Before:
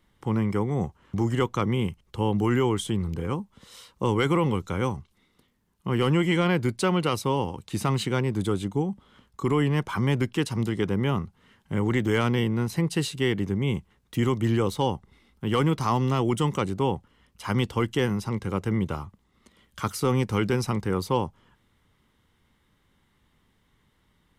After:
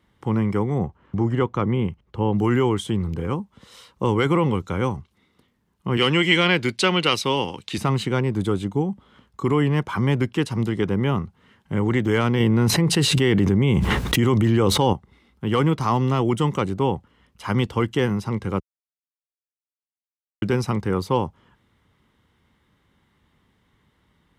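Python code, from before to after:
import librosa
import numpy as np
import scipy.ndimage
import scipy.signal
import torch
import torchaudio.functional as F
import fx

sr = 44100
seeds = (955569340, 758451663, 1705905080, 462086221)

y = fx.lowpass(x, sr, hz=2000.0, slope=6, at=(0.78, 2.34))
y = fx.weighting(y, sr, curve='D', at=(5.97, 7.78))
y = fx.env_flatten(y, sr, amount_pct=100, at=(12.4, 14.93))
y = fx.edit(y, sr, fx.silence(start_s=18.6, length_s=1.82), tone=tone)
y = scipy.signal.sosfilt(scipy.signal.butter(2, 47.0, 'highpass', fs=sr, output='sos'), y)
y = fx.high_shelf(y, sr, hz=5100.0, db=-7.5)
y = y * 10.0 ** (3.5 / 20.0)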